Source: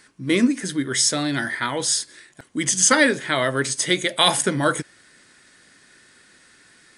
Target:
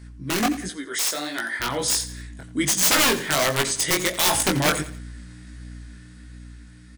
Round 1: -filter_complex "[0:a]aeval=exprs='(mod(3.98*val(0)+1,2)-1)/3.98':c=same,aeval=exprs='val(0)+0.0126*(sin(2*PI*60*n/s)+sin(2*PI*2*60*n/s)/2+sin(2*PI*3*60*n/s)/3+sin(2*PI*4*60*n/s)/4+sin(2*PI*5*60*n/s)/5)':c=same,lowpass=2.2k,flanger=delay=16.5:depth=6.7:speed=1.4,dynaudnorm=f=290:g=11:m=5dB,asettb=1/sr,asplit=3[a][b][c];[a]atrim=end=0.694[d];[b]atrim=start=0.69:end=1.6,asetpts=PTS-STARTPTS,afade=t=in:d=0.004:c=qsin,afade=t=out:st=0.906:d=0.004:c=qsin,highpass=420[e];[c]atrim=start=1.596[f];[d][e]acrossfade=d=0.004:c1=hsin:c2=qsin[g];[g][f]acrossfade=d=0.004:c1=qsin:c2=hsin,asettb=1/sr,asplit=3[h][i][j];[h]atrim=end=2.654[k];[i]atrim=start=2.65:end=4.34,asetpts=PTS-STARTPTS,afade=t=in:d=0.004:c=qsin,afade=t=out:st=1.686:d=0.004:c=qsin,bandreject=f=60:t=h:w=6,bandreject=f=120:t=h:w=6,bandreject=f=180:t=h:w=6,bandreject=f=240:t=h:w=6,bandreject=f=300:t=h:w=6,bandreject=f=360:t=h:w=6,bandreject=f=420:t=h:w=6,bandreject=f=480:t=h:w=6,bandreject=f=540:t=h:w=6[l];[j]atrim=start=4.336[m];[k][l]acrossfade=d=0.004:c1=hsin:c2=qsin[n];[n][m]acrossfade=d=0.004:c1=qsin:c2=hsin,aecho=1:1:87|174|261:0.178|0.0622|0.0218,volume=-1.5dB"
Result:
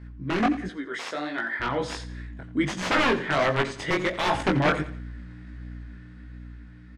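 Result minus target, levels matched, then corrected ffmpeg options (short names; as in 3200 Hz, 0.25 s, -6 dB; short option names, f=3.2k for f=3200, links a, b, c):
2000 Hz band +3.0 dB
-filter_complex "[0:a]aeval=exprs='(mod(3.98*val(0)+1,2)-1)/3.98':c=same,aeval=exprs='val(0)+0.0126*(sin(2*PI*60*n/s)+sin(2*PI*2*60*n/s)/2+sin(2*PI*3*60*n/s)/3+sin(2*PI*4*60*n/s)/4+sin(2*PI*5*60*n/s)/5)':c=same,flanger=delay=16.5:depth=6.7:speed=1.4,dynaudnorm=f=290:g=11:m=5dB,asettb=1/sr,asplit=3[a][b][c];[a]atrim=end=0.694[d];[b]atrim=start=0.69:end=1.6,asetpts=PTS-STARTPTS,afade=t=in:d=0.004:c=qsin,afade=t=out:st=0.906:d=0.004:c=qsin,highpass=420[e];[c]atrim=start=1.596[f];[d][e]acrossfade=d=0.004:c1=hsin:c2=qsin[g];[g][f]acrossfade=d=0.004:c1=qsin:c2=hsin,asettb=1/sr,asplit=3[h][i][j];[h]atrim=end=2.654[k];[i]atrim=start=2.65:end=4.34,asetpts=PTS-STARTPTS,afade=t=in:d=0.004:c=qsin,afade=t=out:st=1.686:d=0.004:c=qsin,bandreject=f=60:t=h:w=6,bandreject=f=120:t=h:w=6,bandreject=f=180:t=h:w=6,bandreject=f=240:t=h:w=6,bandreject=f=300:t=h:w=6,bandreject=f=360:t=h:w=6,bandreject=f=420:t=h:w=6,bandreject=f=480:t=h:w=6,bandreject=f=540:t=h:w=6[l];[j]atrim=start=4.336[m];[k][l]acrossfade=d=0.004:c1=hsin:c2=qsin[n];[n][m]acrossfade=d=0.004:c1=qsin:c2=hsin,aecho=1:1:87|174|261:0.178|0.0622|0.0218,volume=-1.5dB"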